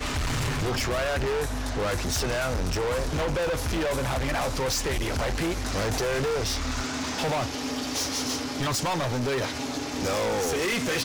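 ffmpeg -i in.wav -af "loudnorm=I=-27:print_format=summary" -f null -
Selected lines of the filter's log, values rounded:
Input Integrated:    -27.4 LUFS
Input True Peak:     -21.5 dBTP
Input LRA:             0.9 LU
Input Threshold:     -37.4 LUFS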